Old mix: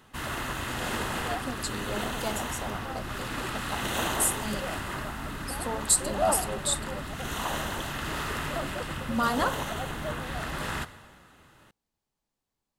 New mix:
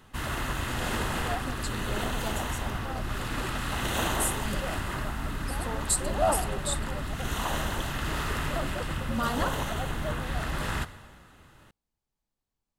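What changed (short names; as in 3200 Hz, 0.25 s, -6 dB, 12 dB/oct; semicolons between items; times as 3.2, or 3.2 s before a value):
speech -4.5 dB; master: add low shelf 92 Hz +9.5 dB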